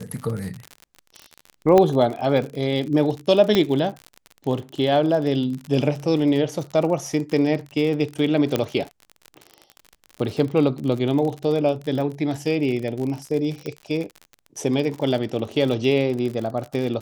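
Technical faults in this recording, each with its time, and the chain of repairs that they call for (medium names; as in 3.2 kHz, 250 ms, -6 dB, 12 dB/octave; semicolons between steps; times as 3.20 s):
crackle 48 per s -28 dBFS
1.78 s: pop -6 dBFS
3.55 s: pop -6 dBFS
8.56 s: pop -7 dBFS
13.66 s: pop -17 dBFS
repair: de-click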